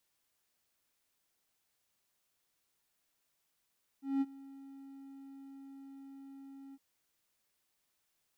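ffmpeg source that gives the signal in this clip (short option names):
-f lavfi -i "aevalsrc='0.0562*(1-4*abs(mod(273*t+0.25,1)-0.5))':d=2.76:s=44100,afade=t=in:d=0.193,afade=t=out:st=0.193:d=0.037:silence=0.0841,afade=t=out:st=2.72:d=0.04"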